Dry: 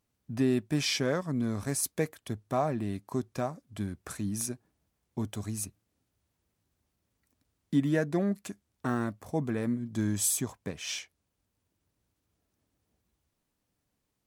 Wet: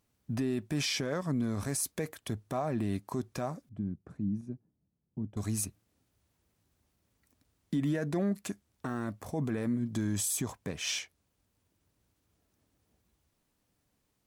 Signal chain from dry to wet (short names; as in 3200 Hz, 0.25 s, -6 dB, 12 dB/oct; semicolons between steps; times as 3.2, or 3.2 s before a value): limiter -26.5 dBFS, peak gain reduction 11 dB; 3.69–5.37 band-pass 170 Hz, Q 1.4; gain +3.5 dB